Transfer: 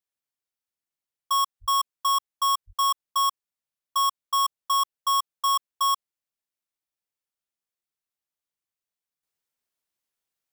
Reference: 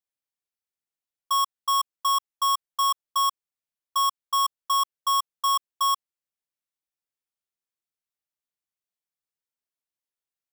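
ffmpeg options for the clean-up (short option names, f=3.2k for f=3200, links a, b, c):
-filter_complex "[0:a]asplit=3[a][b][c];[a]afade=t=out:st=1.6:d=0.02[d];[b]highpass=f=140:w=0.5412,highpass=f=140:w=1.3066,afade=t=in:st=1.6:d=0.02,afade=t=out:st=1.72:d=0.02[e];[c]afade=t=in:st=1.72:d=0.02[f];[d][e][f]amix=inputs=3:normalize=0,asplit=3[g][h][i];[g]afade=t=out:st=2.66:d=0.02[j];[h]highpass=f=140:w=0.5412,highpass=f=140:w=1.3066,afade=t=in:st=2.66:d=0.02,afade=t=out:st=2.78:d=0.02[k];[i]afade=t=in:st=2.78:d=0.02[l];[j][k][l]amix=inputs=3:normalize=0,asetnsamples=n=441:p=0,asendcmd='9.23 volume volume -6dB',volume=0dB"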